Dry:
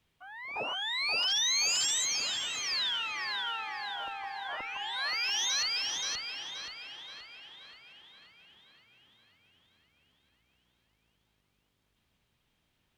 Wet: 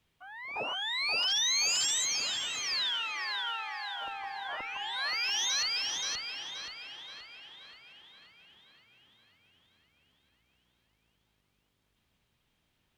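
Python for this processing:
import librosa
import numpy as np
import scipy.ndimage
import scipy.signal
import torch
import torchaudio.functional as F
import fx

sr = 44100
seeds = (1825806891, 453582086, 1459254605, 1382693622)

y = fx.highpass(x, sr, hz=fx.line((2.82, 220.0), (4.0, 760.0)), slope=12, at=(2.82, 4.0), fade=0.02)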